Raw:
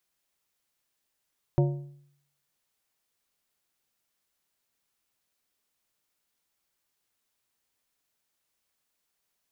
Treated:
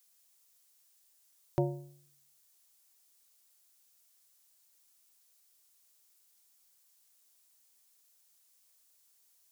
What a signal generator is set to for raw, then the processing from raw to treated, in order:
metal hit plate, lowest mode 142 Hz, decay 0.69 s, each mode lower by 5.5 dB, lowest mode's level -17.5 dB
tone controls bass -9 dB, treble +13 dB

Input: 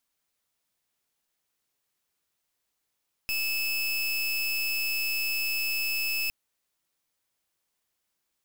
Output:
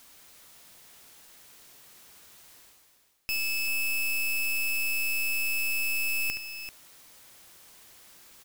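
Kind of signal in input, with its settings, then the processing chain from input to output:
pulse 2.61 kHz, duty 30% -28.5 dBFS 3.01 s
reverse; upward compressor, threshold -33 dBFS; reverse; multi-tap echo 71/389 ms -9.5/-10.5 dB

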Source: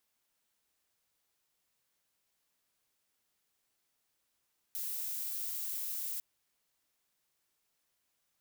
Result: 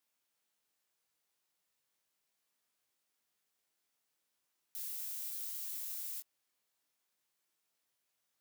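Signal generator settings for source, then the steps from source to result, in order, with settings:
noise violet, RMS -38 dBFS 1.45 s
chorus 0.38 Hz, delay 19 ms, depth 3.2 ms; high-pass 170 Hz 6 dB/octave

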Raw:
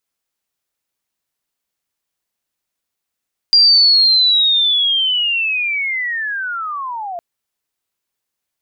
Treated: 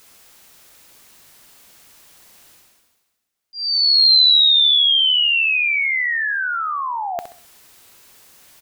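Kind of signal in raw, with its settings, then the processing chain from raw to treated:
sweep linear 4.8 kHz -> 670 Hz -6 dBFS -> -23 dBFS 3.66 s
reverse; upward compressor, threshold -25 dBFS; reverse; slow attack 594 ms; feedback delay 65 ms, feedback 36%, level -10 dB

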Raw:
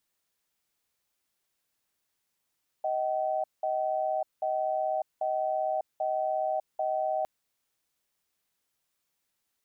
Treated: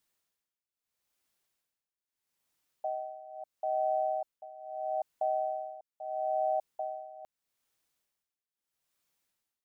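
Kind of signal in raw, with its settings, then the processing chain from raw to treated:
cadence 628 Hz, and 764 Hz, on 0.60 s, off 0.19 s, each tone -29 dBFS 4.41 s
tremolo 0.77 Hz, depth 89%

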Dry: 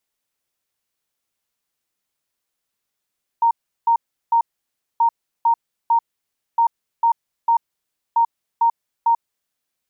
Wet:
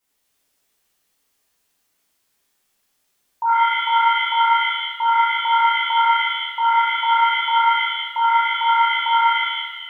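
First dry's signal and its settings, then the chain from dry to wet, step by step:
beep pattern sine 927 Hz, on 0.09 s, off 0.36 s, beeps 3, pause 0.59 s, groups 4, -12 dBFS
peak limiter -18 dBFS; pitch-shifted reverb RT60 1.2 s, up +7 st, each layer -2 dB, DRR -8.5 dB

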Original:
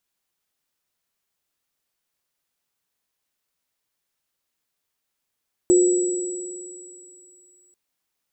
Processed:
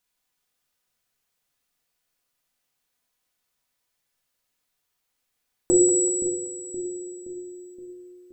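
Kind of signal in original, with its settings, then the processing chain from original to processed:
sine partials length 2.04 s, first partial 359 Hz, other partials 492/7820 Hz, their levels -18/-10 dB, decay 2.14 s, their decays 2.25/3.41 s, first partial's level -11 dB
peaking EQ 240 Hz -3 dB 1.3 oct; on a send: two-band feedback delay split 470 Hz, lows 521 ms, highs 190 ms, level -9 dB; on the sum: simulated room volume 980 m³, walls furnished, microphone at 1.9 m

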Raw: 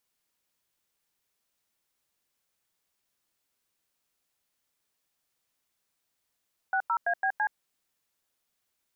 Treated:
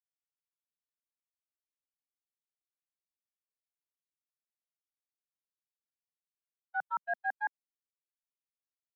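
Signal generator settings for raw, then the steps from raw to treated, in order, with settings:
DTMF "60ABC", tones 73 ms, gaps 94 ms, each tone -26.5 dBFS
gate -26 dBFS, range -58 dB; high-pass sweep 75 Hz -> 650 Hz, 5.87–8.46 s

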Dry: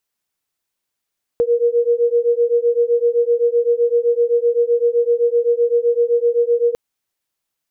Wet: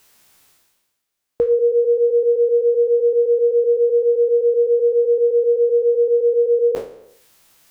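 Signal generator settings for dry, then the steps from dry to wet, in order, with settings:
beating tones 470 Hz, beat 7.8 Hz, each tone -16 dBFS 5.35 s
spectral sustain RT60 0.42 s; reverse; upward compressor, threshold -35 dBFS; reverse

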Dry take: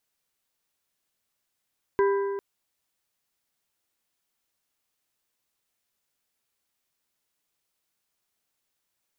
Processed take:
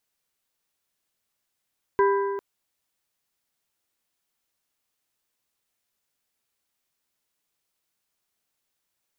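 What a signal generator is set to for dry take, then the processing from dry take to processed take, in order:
metal hit plate, length 0.40 s, lowest mode 397 Hz, modes 4, decay 2.03 s, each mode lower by 7 dB, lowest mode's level -18 dB
dynamic bell 1.1 kHz, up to +6 dB, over -39 dBFS, Q 1

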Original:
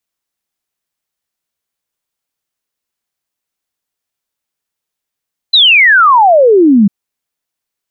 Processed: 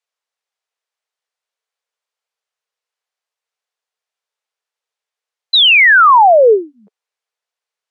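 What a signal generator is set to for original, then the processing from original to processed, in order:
log sweep 4.1 kHz -> 190 Hz 1.35 s -3 dBFS
elliptic high-pass 430 Hz, stop band 40 dB; distance through air 64 m

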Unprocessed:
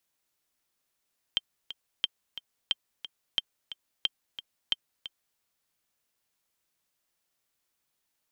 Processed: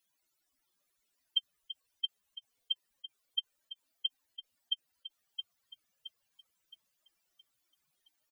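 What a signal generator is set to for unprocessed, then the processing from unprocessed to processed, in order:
metronome 179 bpm, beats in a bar 2, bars 6, 3.15 kHz, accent 13 dB -12 dBFS
spectral contrast enhancement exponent 3.6; on a send: feedback delay 669 ms, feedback 41%, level -7.5 dB

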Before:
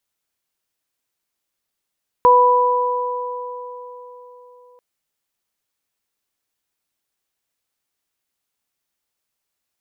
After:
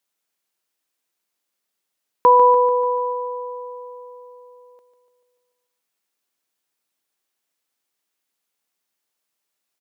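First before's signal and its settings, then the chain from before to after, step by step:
additive tone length 2.54 s, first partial 494 Hz, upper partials 5 dB, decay 4.33 s, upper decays 3.38 s, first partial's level -13 dB
high-pass 180 Hz 12 dB/octave; feedback delay 146 ms, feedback 58%, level -10 dB

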